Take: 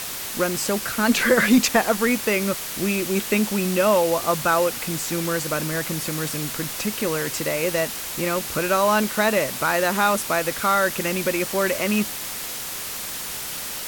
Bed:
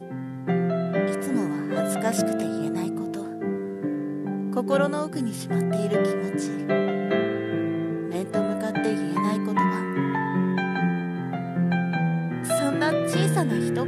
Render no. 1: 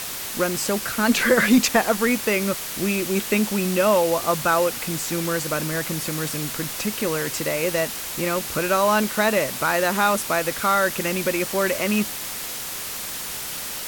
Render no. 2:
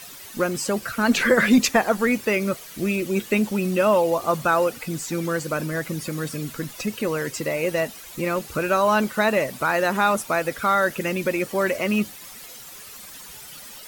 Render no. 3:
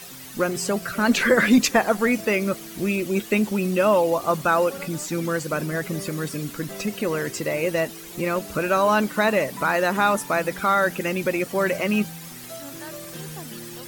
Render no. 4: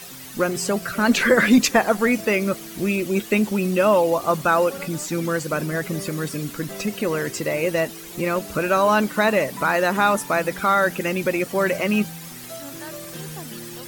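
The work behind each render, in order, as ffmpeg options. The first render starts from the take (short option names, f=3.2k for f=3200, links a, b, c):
-af anull
-af "afftdn=nr=13:nf=-31"
-filter_complex "[1:a]volume=-15.5dB[a];[0:a][a]amix=inputs=2:normalize=0"
-af "volume=1.5dB"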